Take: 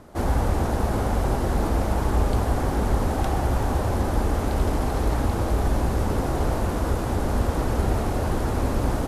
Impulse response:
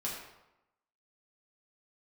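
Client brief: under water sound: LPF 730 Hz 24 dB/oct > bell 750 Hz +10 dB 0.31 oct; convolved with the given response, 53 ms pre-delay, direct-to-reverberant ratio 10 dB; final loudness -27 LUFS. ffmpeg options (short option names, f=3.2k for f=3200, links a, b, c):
-filter_complex "[0:a]asplit=2[a][b];[1:a]atrim=start_sample=2205,adelay=53[c];[b][c]afir=irnorm=-1:irlink=0,volume=-12.5dB[d];[a][d]amix=inputs=2:normalize=0,lowpass=f=730:w=0.5412,lowpass=f=730:w=1.3066,equalizer=f=750:t=o:w=0.31:g=10,volume=-3dB"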